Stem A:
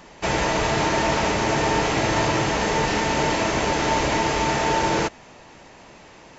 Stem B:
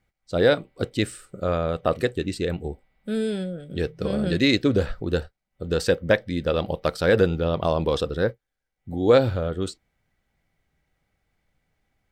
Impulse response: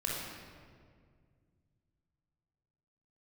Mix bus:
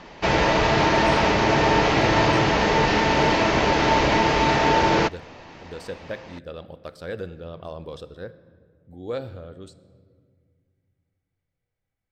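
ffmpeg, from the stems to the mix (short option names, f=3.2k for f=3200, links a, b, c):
-filter_complex "[0:a]lowpass=f=5.2k:w=0.5412,lowpass=f=5.2k:w=1.3066,volume=2.5dB[a];[1:a]volume=-15dB,asplit=2[b][c];[c]volume=-17dB[d];[2:a]atrim=start_sample=2205[e];[d][e]afir=irnorm=-1:irlink=0[f];[a][b][f]amix=inputs=3:normalize=0"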